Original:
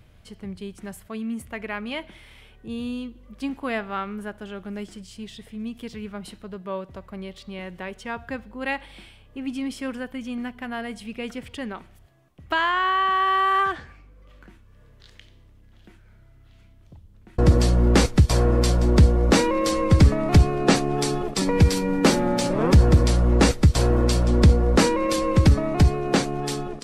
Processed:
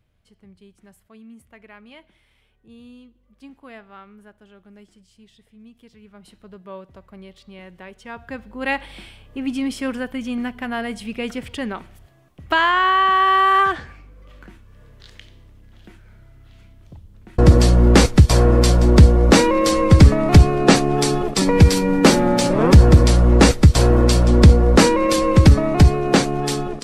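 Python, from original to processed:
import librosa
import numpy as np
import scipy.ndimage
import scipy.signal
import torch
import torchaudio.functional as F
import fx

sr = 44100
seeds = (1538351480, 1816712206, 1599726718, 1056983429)

y = fx.gain(x, sr, db=fx.line((6.0, -13.5), (6.47, -5.5), (7.97, -5.5), (8.75, 5.5)))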